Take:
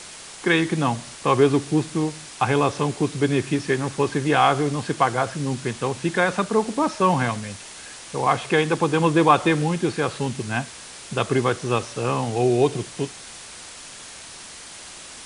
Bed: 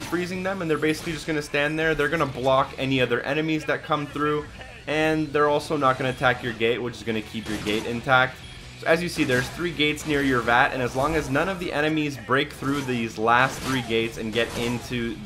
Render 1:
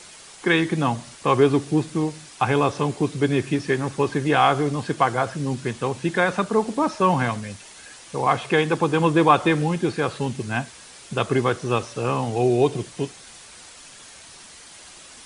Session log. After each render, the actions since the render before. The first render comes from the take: noise reduction 6 dB, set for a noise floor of -40 dBFS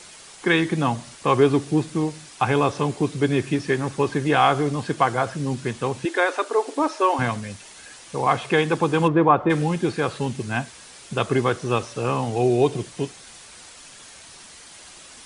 6.05–7.19 s: brick-wall FIR high-pass 260 Hz; 9.07–9.49 s: low-pass 1.9 kHz -> 1.2 kHz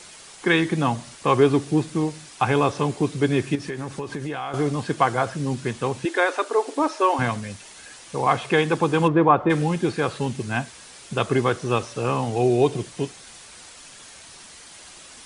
3.55–4.54 s: compression, threshold -26 dBFS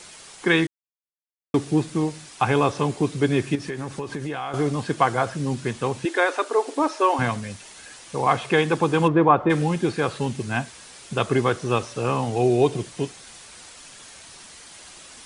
0.67–1.54 s: mute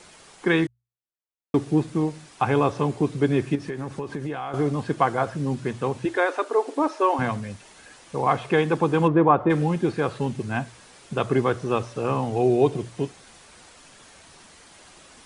treble shelf 2.1 kHz -8.5 dB; hum notches 60/120 Hz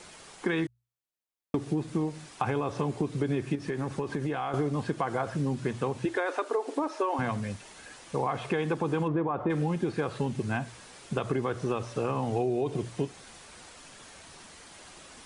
peak limiter -13.5 dBFS, peak gain reduction 9 dB; compression, threshold -25 dBFS, peak gain reduction 8 dB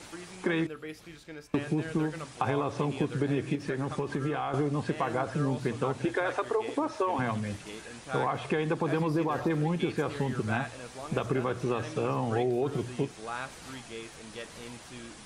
add bed -18.5 dB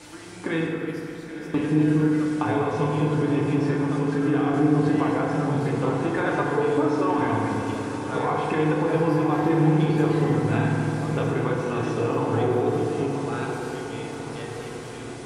echo that smears into a reverb 1013 ms, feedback 60%, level -10 dB; FDN reverb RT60 3 s, low-frequency decay 1.3×, high-frequency decay 0.4×, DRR -2.5 dB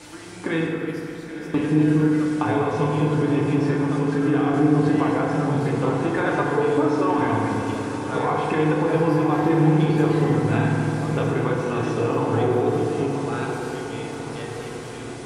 trim +2 dB

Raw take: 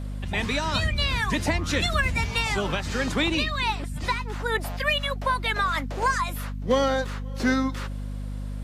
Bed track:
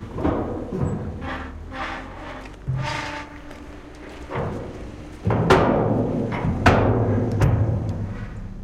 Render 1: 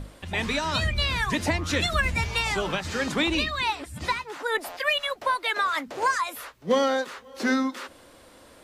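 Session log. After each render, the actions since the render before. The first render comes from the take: hum notches 50/100/150/200/250 Hz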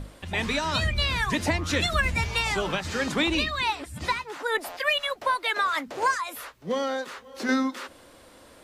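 6.14–7.49 s: compression 1.5:1, threshold -33 dBFS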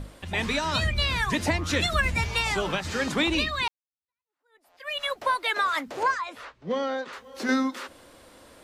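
3.68–5.03 s: fade in exponential; 6.03–7.13 s: distance through air 120 m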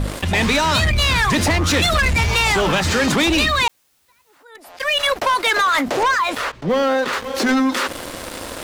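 waveshaping leveller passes 3; level flattener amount 50%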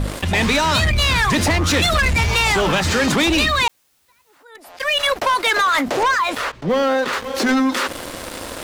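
no audible change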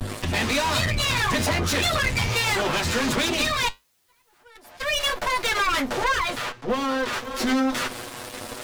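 comb filter that takes the minimum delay 8.2 ms; flange 1.3 Hz, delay 9.8 ms, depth 1.4 ms, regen -72%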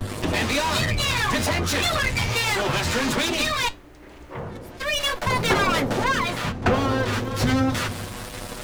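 add bed track -7 dB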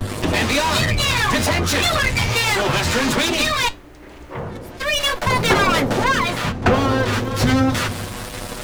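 trim +4.5 dB

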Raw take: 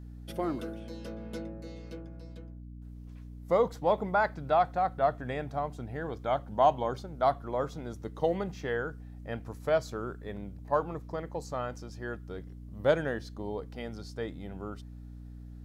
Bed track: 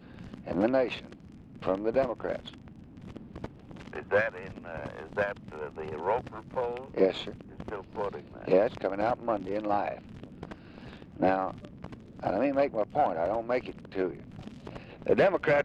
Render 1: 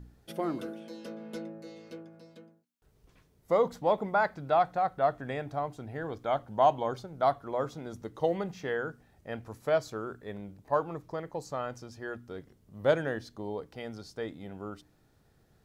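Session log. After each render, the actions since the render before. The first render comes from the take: de-hum 60 Hz, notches 5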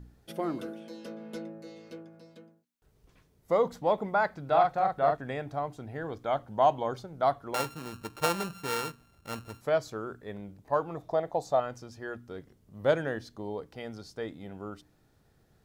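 4.45–5.17 s: doubling 42 ms -3 dB; 7.54–9.61 s: sorted samples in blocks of 32 samples; 10.97–11.60 s: small resonant body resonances 690/3600 Hz, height 16 dB, ringing for 20 ms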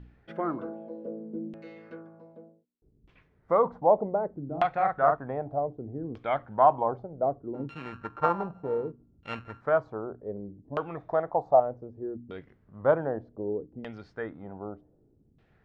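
LFO low-pass saw down 0.65 Hz 240–2900 Hz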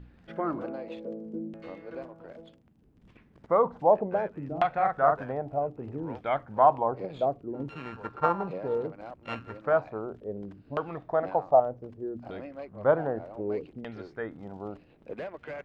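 add bed track -15 dB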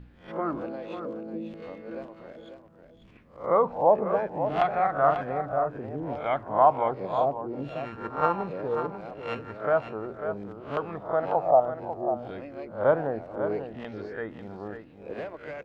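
reverse spectral sustain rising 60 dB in 0.35 s; delay 544 ms -9 dB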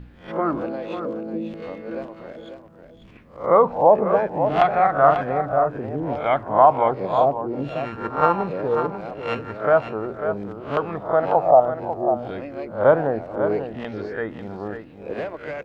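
trim +7 dB; peak limiter -3 dBFS, peak gain reduction 3 dB

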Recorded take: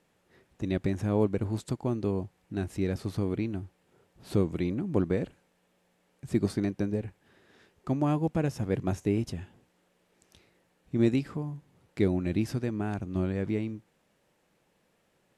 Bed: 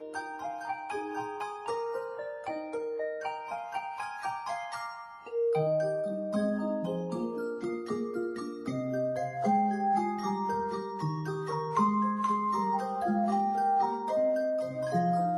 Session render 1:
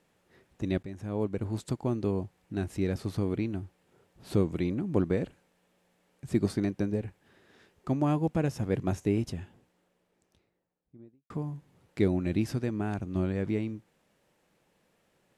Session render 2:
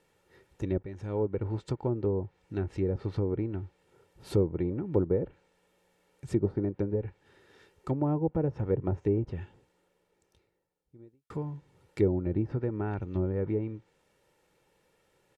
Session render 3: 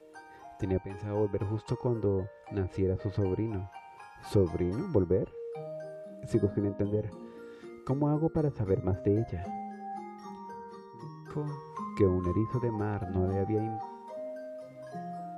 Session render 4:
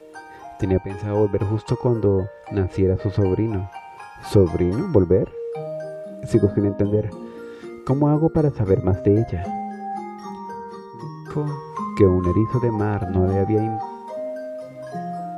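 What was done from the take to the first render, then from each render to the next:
0.83–1.71 s: fade in, from -14 dB; 9.20–11.30 s: studio fade out
low-pass that closes with the level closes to 800 Hz, closed at -24.5 dBFS; comb 2.2 ms, depth 48%
add bed -12.5 dB
trim +10.5 dB

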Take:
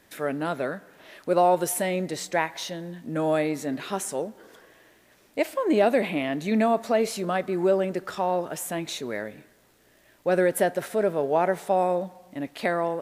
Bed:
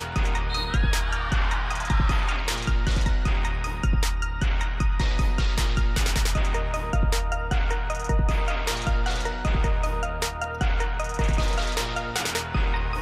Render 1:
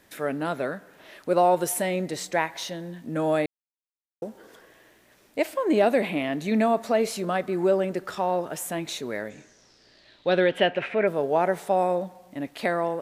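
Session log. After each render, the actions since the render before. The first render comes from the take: 3.46–4.22 s: mute; 9.29–11.06 s: resonant low-pass 7.1 kHz -> 2.2 kHz, resonance Q 6.9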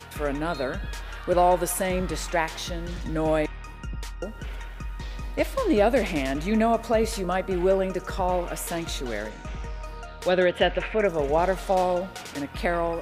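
add bed -12 dB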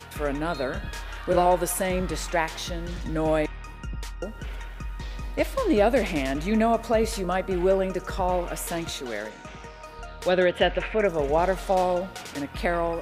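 0.72–1.46 s: doubling 29 ms -5.5 dB; 8.90–9.99 s: high-pass 230 Hz 6 dB/octave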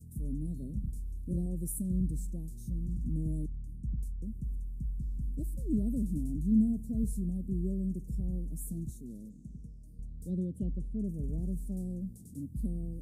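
Chebyshev band-stop 220–8900 Hz, order 3; treble shelf 2 kHz -9 dB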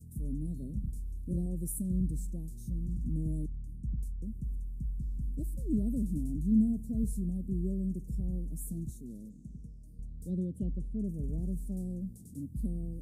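no audible change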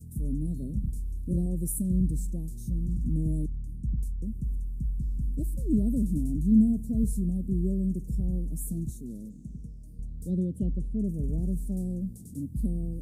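trim +5.5 dB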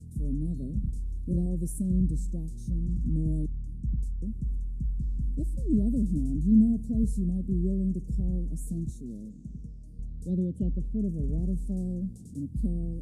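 low-pass 7.1 kHz 12 dB/octave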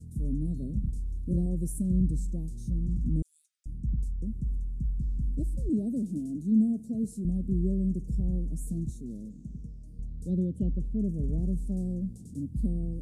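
3.22–3.66 s: brick-wall FIR high-pass 1.2 kHz; 5.69–7.25 s: high-pass 220 Hz

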